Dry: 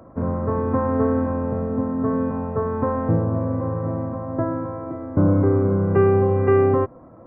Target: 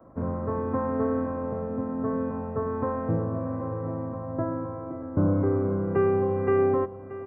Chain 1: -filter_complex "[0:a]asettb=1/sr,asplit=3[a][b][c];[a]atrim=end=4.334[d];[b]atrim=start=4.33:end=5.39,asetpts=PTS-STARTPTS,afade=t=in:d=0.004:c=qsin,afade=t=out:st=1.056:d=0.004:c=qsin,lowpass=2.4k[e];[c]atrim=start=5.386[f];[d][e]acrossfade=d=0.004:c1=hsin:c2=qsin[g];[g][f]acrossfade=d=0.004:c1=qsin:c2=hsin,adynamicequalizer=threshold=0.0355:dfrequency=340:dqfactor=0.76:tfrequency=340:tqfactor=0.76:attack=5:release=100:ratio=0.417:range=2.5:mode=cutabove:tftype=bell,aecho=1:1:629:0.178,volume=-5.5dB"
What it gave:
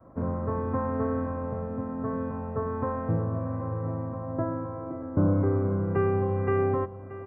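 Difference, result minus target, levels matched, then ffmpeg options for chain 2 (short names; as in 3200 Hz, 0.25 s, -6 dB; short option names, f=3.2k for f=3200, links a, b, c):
125 Hz band +3.5 dB
-filter_complex "[0:a]asettb=1/sr,asplit=3[a][b][c];[a]atrim=end=4.334[d];[b]atrim=start=4.33:end=5.39,asetpts=PTS-STARTPTS,afade=t=in:d=0.004:c=qsin,afade=t=out:st=1.056:d=0.004:c=qsin,lowpass=2.4k[e];[c]atrim=start=5.386[f];[d][e]acrossfade=d=0.004:c1=hsin:c2=qsin[g];[g][f]acrossfade=d=0.004:c1=qsin:c2=hsin,adynamicequalizer=threshold=0.0355:dfrequency=96:dqfactor=0.76:tfrequency=96:tqfactor=0.76:attack=5:release=100:ratio=0.417:range=2.5:mode=cutabove:tftype=bell,aecho=1:1:629:0.178,volume=-5.5dB"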